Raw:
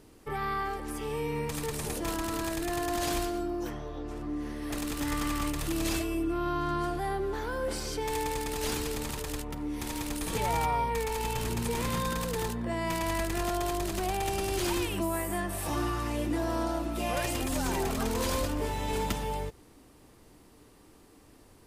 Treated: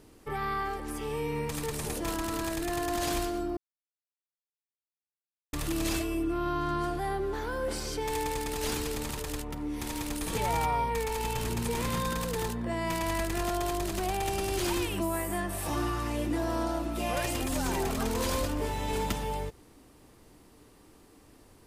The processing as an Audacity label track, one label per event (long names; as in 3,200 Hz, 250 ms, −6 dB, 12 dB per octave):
3.570000	5.530000	silence